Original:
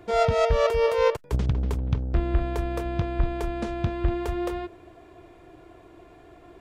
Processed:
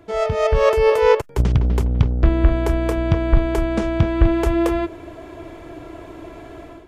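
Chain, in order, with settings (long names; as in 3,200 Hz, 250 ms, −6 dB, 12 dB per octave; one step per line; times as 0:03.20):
dynamic equaliser 4,200 Hz, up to −5 dB, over −52 dBFS, Q 2.7
automatic gain control gain up to 13 dB
wrong playback speed 25 fps video run at 24 fps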